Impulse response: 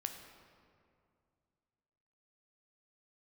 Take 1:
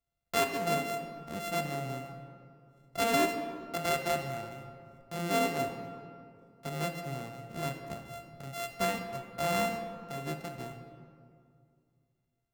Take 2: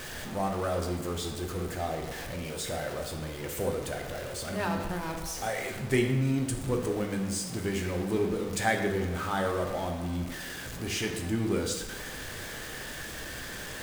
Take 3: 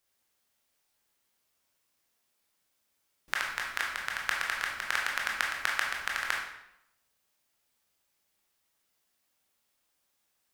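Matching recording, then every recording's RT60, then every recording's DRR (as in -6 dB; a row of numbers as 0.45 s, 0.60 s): 1; 2.3 s, 1.2 s, 0.80 s; 4.5 dB, 2.0 dB, -2.0 dB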